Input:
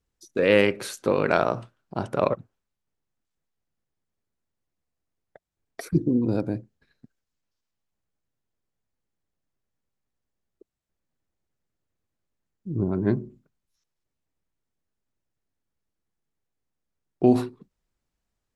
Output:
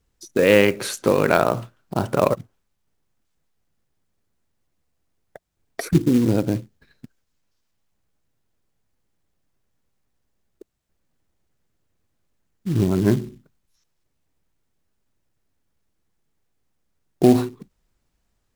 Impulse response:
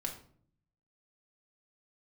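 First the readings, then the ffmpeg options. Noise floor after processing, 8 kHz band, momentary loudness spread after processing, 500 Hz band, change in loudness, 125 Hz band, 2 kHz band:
-73 dBFS, n/a, 13 LU, +4.0 dB, +4.5 dB, +6.0 dB, +4.0 dB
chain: -filter_complex "[0:a]lowshelf=f=180:g=2.5,asplit=2[a][b];[b]acompressor=threshold=-29dB:ratio=10,volume=0.5dB[c];[a][c]amix=inputs=2:normalize=0,acrusher=bits=5:mode=log:mix=0:aa=0.000001,volume=2dB"

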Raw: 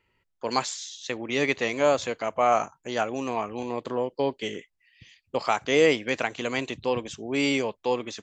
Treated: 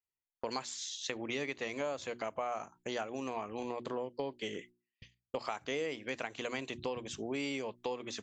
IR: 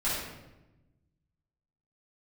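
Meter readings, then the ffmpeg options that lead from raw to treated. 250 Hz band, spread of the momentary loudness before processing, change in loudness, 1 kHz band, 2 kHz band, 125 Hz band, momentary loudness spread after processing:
-11.5 dB, 11 LU, -12.0 dB, -13.0 dB, -12.0 dB, -11.5 dB, 4 LU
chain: -af "agate=range=-32dB:threshold=-49dB:ratio=16:detection=peak,bandreject=f=60:t=h:w=6,bandreject=f=120:t=h:w=6,bandreject=f=180:t=h:w=6,bandreject=f=240:t=h:w=6,bandreject=f=300:t=h:w=6,bandreject=f=360:t=h:w=6,acompressor=threshold=-35dB:ratio=6"

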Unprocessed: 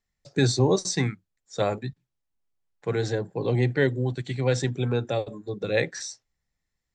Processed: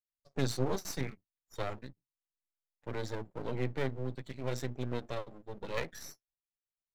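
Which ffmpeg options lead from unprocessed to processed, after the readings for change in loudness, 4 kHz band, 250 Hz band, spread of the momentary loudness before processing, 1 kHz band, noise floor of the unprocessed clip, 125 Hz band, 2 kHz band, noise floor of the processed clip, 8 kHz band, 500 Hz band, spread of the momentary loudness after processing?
-12.0 dB, -12.0 dB, -11.5 dB, 13 LU, -8.5 dB, -82 dBFS, -13.0 dB, -12.0 dB, under -85 dBFS, -12.5 dB, -12.5 dB, 14 LU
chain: -af "afftdn=nr=15:nf=-48,flanger=delay=2:depth=4.8:regen=-58:speed=0.64:shape=triangular,aeval=exprs='max(val(0),0)':c=same,volume=-3.5dB"

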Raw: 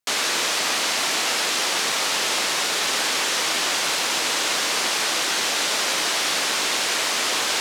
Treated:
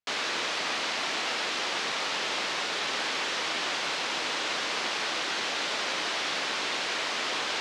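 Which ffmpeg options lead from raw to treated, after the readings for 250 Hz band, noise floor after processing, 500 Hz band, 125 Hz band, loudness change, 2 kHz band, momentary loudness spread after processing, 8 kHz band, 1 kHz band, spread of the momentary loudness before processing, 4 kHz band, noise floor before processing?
-6.0 dB, -32 dBFS, -6.0 dB, -6.0 dB, -8.5 dB, -6.0 dB, 0 LU, -15.0 dB, -6.0 dB, 0 LU, -8.0 dB, -24 dBFS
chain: -af "lowpass=4.4k,volume=-6dB"

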